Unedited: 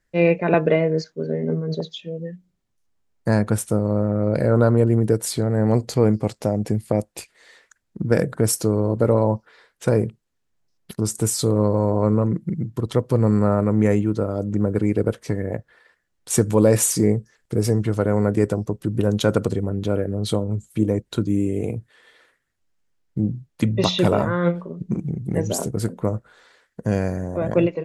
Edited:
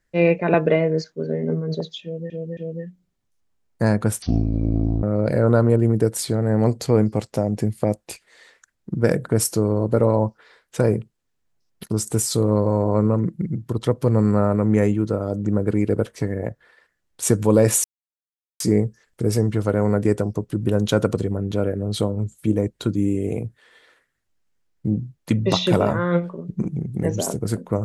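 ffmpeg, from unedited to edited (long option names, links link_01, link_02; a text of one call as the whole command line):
ffmpeg -i in.wav -filter_complex "[0:a]asplit=6[link_01][link_02][link_03][link_04][link_05][link_06];[link_01]atrim=end=2.302[link_07];[link_02]atrim=start=2.028:end=2.302[link_08];[link_03]atrim=start=2.028:end=3.684[link_09];[link_04]atrim=start=3.68:end=4.11,asetpts=PTS-STARTPTS,asetrate=23373,aresample=44100,atrim=end_sample=35779,asetpts=PTS-STARTPTS[link_10];[link_05]atrim=start=4.106:end=16.92,asetpts=PTS-STARTPTS,afade=type=out:start_time=12.81:duration=0.004:curve=hsin,apad=pad_dur=0.76[link_11];[link_06]atrim=start=16.92,asetpts=PTS-STARTPTS,afade=type=in:duration=0.004:curve=hsin[link_12];[link_07][link_08]acrossfade=duration=0.004:curve1=hsin:curve2=hsin[link_13];[link_13][link_09]acrossfade=duration=0.004:curve1=hsin:curve2=hsin[link_14];[link_14][link_10]acrossfade=duration=0.004:curve1=hsin:curve2=hsin[link_15];[link_11][link_12]concat=n=2:v=0:a=1[link_16];[link_15][link_16]acrossfade=duration=0.004:curve1=hsin:curve2=hsin" out.wav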